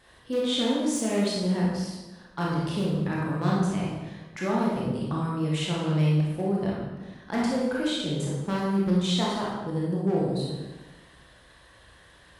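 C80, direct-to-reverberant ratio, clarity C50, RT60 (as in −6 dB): 2.0 dB, −5.0 dB, −1.0 dB, 1.2 s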